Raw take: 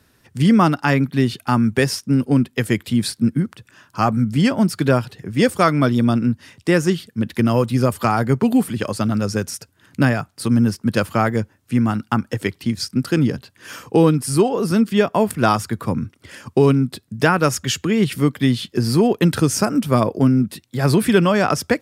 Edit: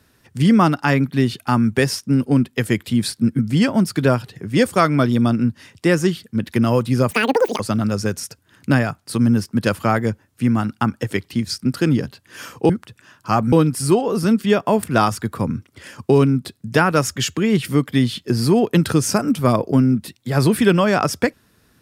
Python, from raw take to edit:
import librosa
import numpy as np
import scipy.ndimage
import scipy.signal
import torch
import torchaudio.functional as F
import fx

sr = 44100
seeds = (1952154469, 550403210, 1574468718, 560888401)

y = fx.edit(x, sr, fx.move(start_s=3.39, length_s=0.83, to_s=14.0),
    fx.speed_span(start_s=7.94, length_s=0.96, speed=1.98), tone=tone)